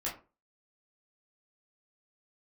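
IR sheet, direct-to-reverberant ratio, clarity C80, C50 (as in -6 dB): -6.5 dB, 15.0 dB, 9.0 dB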